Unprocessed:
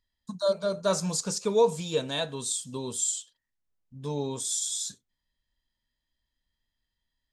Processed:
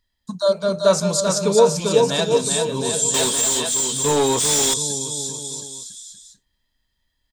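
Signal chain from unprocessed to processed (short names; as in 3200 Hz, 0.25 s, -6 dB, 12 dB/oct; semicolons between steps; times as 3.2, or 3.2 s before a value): bouncing-ball echo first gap 0.39 s, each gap 0.85×, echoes 5; 3.14–4.74 overdrive pedal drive 23 dB, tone 5100 Hz, clips at -16 dBFS; gain +7.5 dB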